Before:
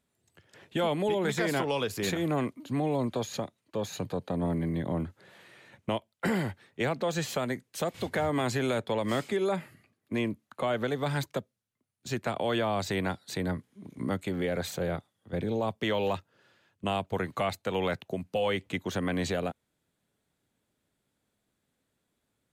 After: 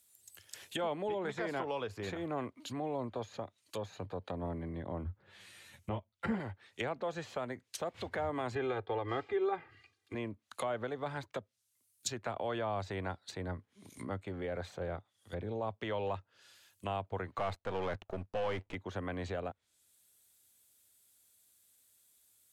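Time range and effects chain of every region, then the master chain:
5.04–6.40 s: tone controls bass +11 dB, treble -4 dB + three-phase chorus
8.55–10.15 s: low-pass 3.9 kHz + comb 2.5 ms, depth 85%
17.38–18.75 s: partial rectifier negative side -12 dB + waveshaping leveller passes 2
whole clip: FFT filter 100 Hz 0 dB, 140 Hz -12 dB, 1.9 kHz -9 dB, 13 kHz +5 dB; low-pass that closes with the level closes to 1.1 kHz, closed at -38.5 dBFS; tilt EQ +3 dB/octave; trim +6.5 dB

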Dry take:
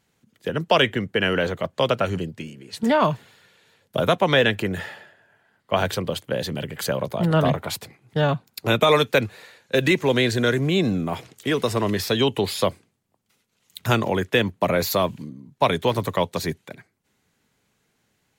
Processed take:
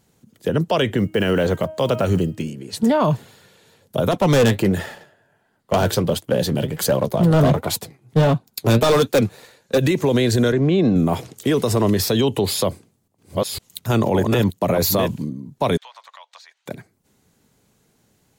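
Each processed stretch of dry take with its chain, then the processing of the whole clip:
0.98–2.45 s: block-companded coder 7-bit + de-hum 314.6 Hz, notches 10
4.11–9.78 s: waveshaping leveller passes 1 + flange 1.4 Hz, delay 2.6 ms, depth 6.4 ms, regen +65% + hard clipper -18 dBFS
10.52–10.96 s: high-pass 200 Hz 6 dB/octave + de-esser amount 70% + distance through air 180 m
12.47–15.14 s: chunks repeated in reverse 558 ms, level -5 dB + square tremolo 1.4 Hz, depth 65%, duty 85%
15.77–16.66 s: Bessel high-pass 1.4 kHz, order 8 + compression 8:1, threshold -41 dBFS + distance through air 150 m
whole clip: peaking EQ 2.1 kHz -9 dB 2.2 oct; loudness maximiser +18 dB; trim -8.5 dB

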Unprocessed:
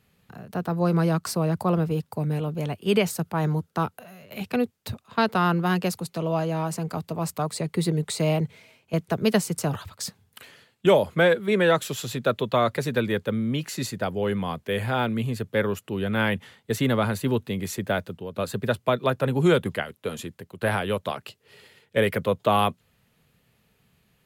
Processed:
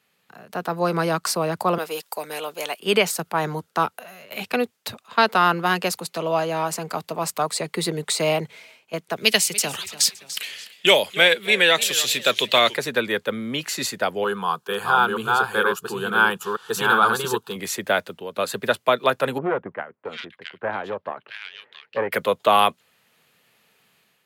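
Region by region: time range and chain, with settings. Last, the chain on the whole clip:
1.78–2.80 s: high-pass 460 Hz + treble shelf 3.6 kHz +9.5 dB
9.16–12.75 s: resonant high shelf 1.8 kHz +9 dB, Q 1.5 + modulated delay 287 ms, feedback 32%, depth 148 cents, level -16 dB
14.24–17.56 s: chunks repeated in reverse 465 ms, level -2 dB + peaking EQ 1.5 kHz +10.5 dB 0.9 oct + static phaser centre 400 Hz, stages 8
19.38–22.12 s: distance through air 330 m + valve stage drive 16 dB, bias 0.8 + bands offset in time lows, highs 670 ms, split 2 kHz
whole clip: frequency weighting A; level rider gain up to 6.5 dB; treble shelf 12 kHz +7 dB

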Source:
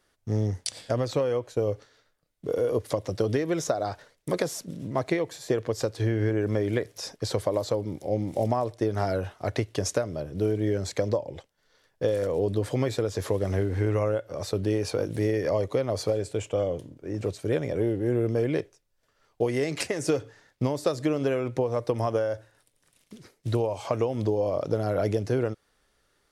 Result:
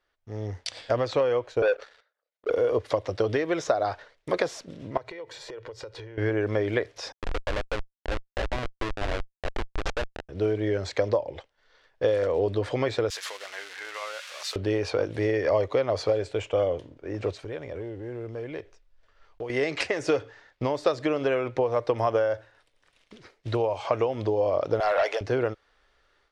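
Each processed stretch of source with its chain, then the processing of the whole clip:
1.62–2.50 s: resonances exaggerated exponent 1.5 + Chebyshev high-pass 490 Hz, order 3 + waveshaping leveller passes 3
4.97–6.18 s: hum notches 60/120/180 Hz + compression 16:1, threshold -38 dBFS + comb 2.1 ms, depth 48%
7.12–10.29 s: high-pass 210 Hz 24 dB/octave + Schmitt trigger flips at -24.5 dBFS
13.10–14.56 s: zero-crossing glitches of -23 dBFS + high-pass 1.4 kHz
17.43–19.50 s: block-companded coder 7-bit + bass shelf 78 Hz +11.5 dB + compression 2:1, threshold -40 dBFS
24.80–25.21 s: high-pass 620 Hz 24 dB/octave + waveshaping leveller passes 2
whole clip: low-pass 3.6 kHz 12 dB/octave; peaking EQ 170 Hz -13 dB 2 oct; level rider gain up to 10.5 dB; trim -4.5 dB

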